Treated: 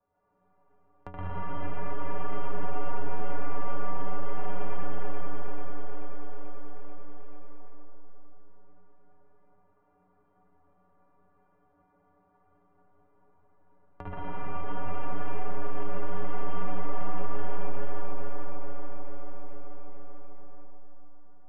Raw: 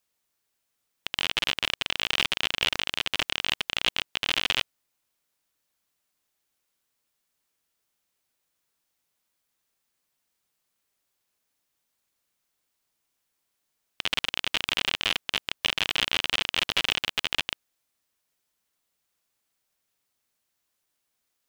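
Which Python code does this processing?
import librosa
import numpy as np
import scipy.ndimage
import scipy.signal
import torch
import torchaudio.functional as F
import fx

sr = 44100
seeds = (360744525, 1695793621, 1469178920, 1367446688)

p1 = scipy.signal.sosfilt(scipy.signal.butter(4, 1100.0, 'lowpass', fs=sr, output='sos'), x)
p2 = fx.peak_eq(p1, sr, hz=160.0, db=4.5, octaves=0.22)
p3 = fx.stiff_resonator(p2, sr, f0_hz=86.0, decay_s=0.48, stiffness=0.03)
p4 = p3 + fx.echo_feedback(p3, sr, ms=437, feedback_pct=45, wet_db=-5, dry=0)
p5 = fx.rev_freeverb(p4, sr, rt60_s=3.5, hf_ratio=0.55, predelay_ms=80, drr_db=-9.0)
p6 = fx.band_squash(p5, sr, depth_pct=70)
y = p6 * librosa.db_to_amplitude(3.0)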